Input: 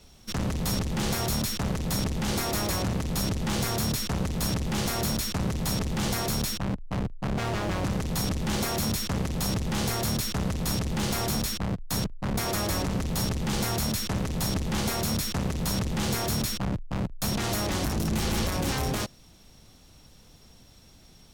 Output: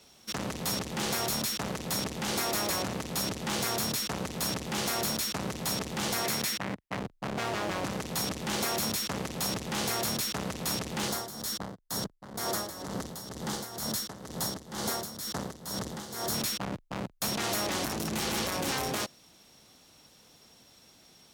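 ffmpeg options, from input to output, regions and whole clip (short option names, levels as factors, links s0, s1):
-filter_complex "[0:a]asettb=1/sr,asplit=3[s0][s1][s2];[s0]atrim=end=6.244[s3];[s1]atrim=start=6.24:end=6.97,asetpts=PTS-STARTPTS,afade=t=in:d=0.004:c=qsin,afade=t=out:st=0.726:d=0.004:c=qsin,highpass=74,equalizer=f=2000:t=o:w=0.6:g=7[s4];[s2]atrim=start=6.966[s5];[s3][s4]acrossfade=d=0.004:c1=hsin:c2=qsin[s6];[s6][s5]acrossfade=d=0.004:c1=qsin:c2=hsin,asettb=1/sr,asplit=3[s7][s8][s9];[s7]atrim=end=11.084[s10];[s8]atrim=start=11.08:end=16.34,asetpts=PTS-STARTPTS,afade=t=in:d=0.004:c=qsin,afade=t=out:st=5.256:d=0.004:c=qsin,equalizer=f=2500:t=o:w=0.51:g=-11.5,tremolo=f=2.1:d=0.75[s11];[s9]atrim=start=16.336[s12];[s10][s11]acrossfade=d=0.004:c1=hsin:c2=qsin[s13];[s13][s12]acrossfade=d=0.004:c1=qsin:c2=hsin,highpass=f=140:p=1,lowshelf=f=180:g=-10.5"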